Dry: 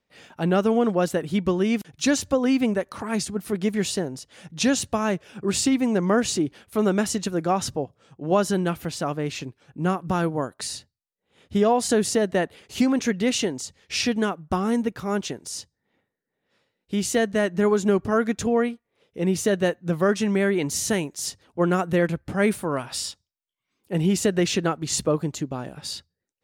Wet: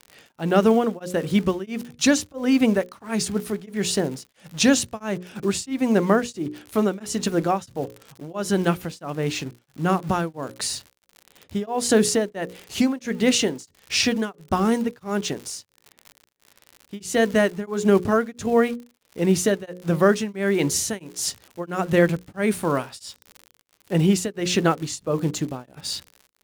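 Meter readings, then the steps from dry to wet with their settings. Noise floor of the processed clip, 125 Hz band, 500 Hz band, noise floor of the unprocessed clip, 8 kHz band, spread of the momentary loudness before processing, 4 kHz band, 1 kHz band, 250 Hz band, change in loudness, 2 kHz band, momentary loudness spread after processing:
-67 dBFS, +1.0 dB, +0.5 dB, -82 dBFS, +1.5 dB, 11 LU, +2.0 dB, +0.5 dB, +1.0 dB, +1.0 dB, +1.5 dB, 13 LU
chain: crackle 91 per s -34 dBFS; in parallel at -11.5 dB: bit crusher 6-bit; on the sum: hum notches 60/120/180/240/300/360/420/480/540 Hz; tremolo of two beating tones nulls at 1.5 Hz; trim +2.5 dB

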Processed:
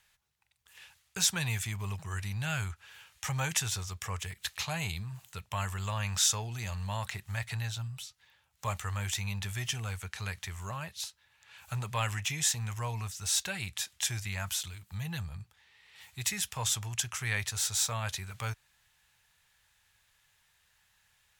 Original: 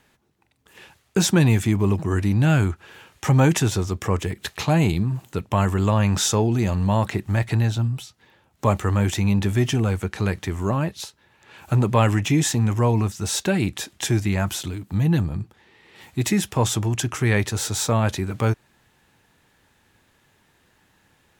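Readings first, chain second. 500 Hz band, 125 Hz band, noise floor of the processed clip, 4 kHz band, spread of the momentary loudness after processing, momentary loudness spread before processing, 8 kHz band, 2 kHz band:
-20.5 dB, -15.5 dB, -71 dBFS, -4.0 dB, 12 LU, 9 LU, -3.0 dB, -7.0 dB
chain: amplifier tone stack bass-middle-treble 10-0-10; trim -2.5 dB

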